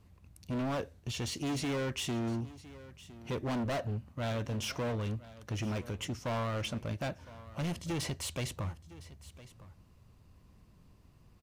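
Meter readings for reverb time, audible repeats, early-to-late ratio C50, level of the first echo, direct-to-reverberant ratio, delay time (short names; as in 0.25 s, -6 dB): none, 1, none, -18.0 dB, none, 1.01 s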